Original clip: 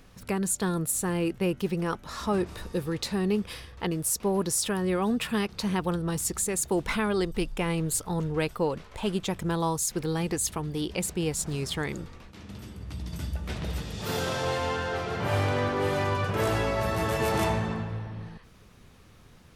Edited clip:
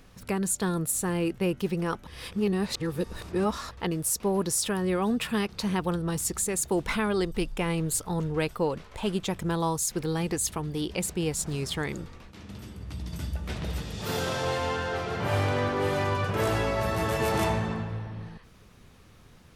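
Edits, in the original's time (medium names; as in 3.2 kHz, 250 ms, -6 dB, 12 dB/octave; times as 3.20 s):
2.07–3.71 s: reverse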